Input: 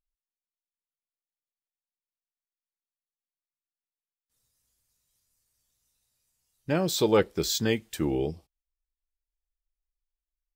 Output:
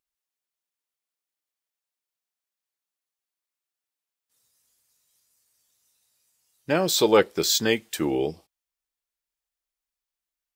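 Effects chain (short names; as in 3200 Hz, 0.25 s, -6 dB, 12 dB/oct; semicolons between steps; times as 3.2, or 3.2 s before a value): HPF 390 Hz 6 dB/oct; gain +6.5 dB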